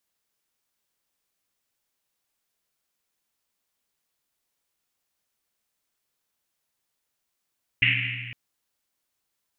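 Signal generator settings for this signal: Risset drum length 0.51 s, pitch 120 Hz, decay 2.62 s, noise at 2.4 kHz, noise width 1 kHz, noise 70%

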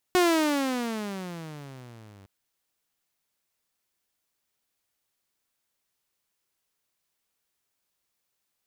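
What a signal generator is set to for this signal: gliding synth tone saw, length 2.11 s, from 368 Hz, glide -23.5 st, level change -31.5 dB, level -15 dB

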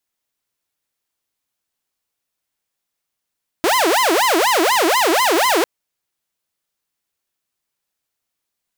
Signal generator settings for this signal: siren wail 318–1040 Hz 4.1 per s saw -10.5 dBFS 2.00 s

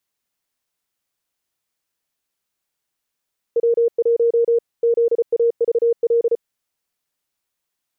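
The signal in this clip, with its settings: Morse "W1 ZAVL" 34 wpm 467 Hz -12.5 dBFS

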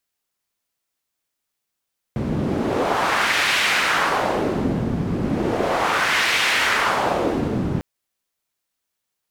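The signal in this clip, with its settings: wind-like swept noise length 5.65 s, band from 180 Hz, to 2.3 kHz, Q 1.4, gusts 2, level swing 3.5 dB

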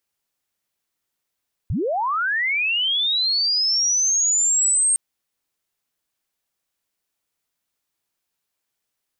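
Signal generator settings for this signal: sweep linear 62 Hz -> 8.6 kHz -20 dBFS -> -15 dBFS 3.26 s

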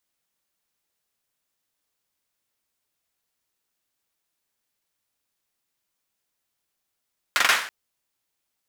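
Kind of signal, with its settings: hand clap length 0.33 s, apart 43 ms, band 1.6 kHz, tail 0.48 s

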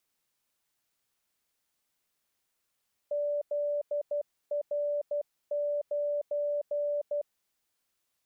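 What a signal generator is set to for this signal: Morse "ZR9" 12 wpm 584 Hz -27.5 dBFS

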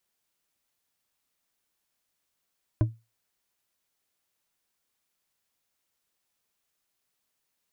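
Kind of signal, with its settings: glass hit bar, lowest mode 113 Hz, decay 0.25 s, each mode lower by 7 dB, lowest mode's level -15.5 dB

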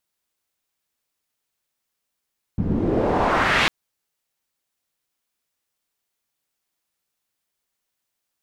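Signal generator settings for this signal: swept filtered noise white, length 1.10 s lowpass, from 160 Hz, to 2.8 kHz, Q 1.6, exponential, gain ramp -8.5 dB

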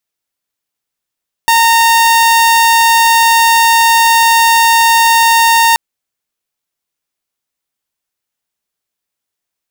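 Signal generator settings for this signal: tone saw 919 Hz -3.5 dBFS 4.28 s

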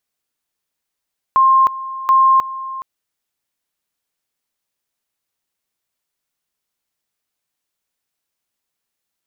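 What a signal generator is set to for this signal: two-level tone 1.06 kHz -8 dBFS, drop 16 dB, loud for 0.31 s, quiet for 0.42 s, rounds 2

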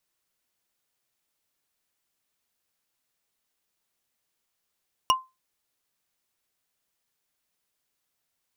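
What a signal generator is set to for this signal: wood hit, lowest mode 1.04 kHz, decay 0.23 s, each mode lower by 2.5 dB, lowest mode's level -14 dB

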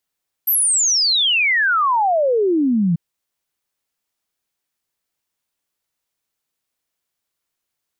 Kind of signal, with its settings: log sweep 13 kHz -> 160 Hz 2.49 s -13.5 dBFS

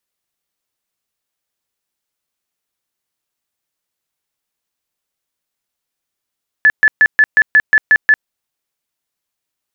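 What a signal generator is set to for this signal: tone bursts 1.73 kHz, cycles 85, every 0.18 s, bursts 9, -5 dBFS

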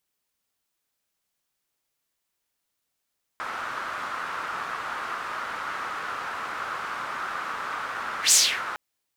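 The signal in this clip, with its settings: whoosh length 5.36 s, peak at 4.92 s, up 0.11 s, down 0.33 s, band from 1.3 kHz, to 7.2 kHz, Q 3.3, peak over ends 17 dB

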